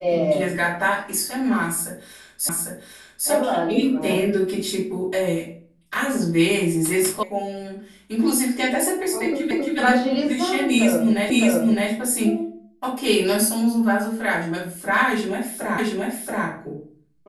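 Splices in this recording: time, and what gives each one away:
2.49 s: repeat of the last 0.8 s
7.23 s: sound stops dead
9.51 s: repeat of the last 0.27 s
11.30 s: repeat of the last 0.61 s
15.78 s: repeat of the last 0.68 s

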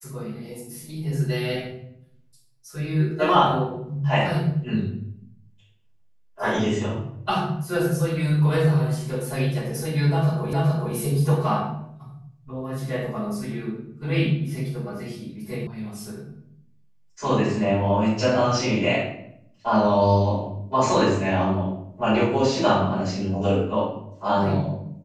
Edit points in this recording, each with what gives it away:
10.53 s: repeat of the last 0.42 s
15.67 s: sound stops dead

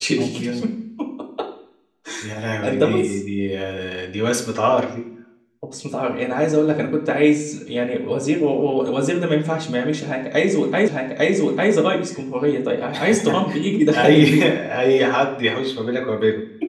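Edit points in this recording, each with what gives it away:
10.88 s: repeat of the last 0.85 s

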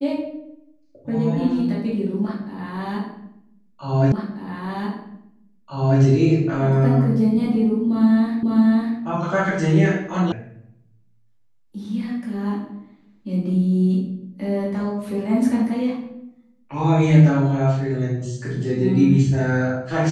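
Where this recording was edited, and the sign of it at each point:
4.12 s: repeat of the last 1.89 s
8.43 s: repeat of the last 0.55 s
10.32 s: sound stops dead

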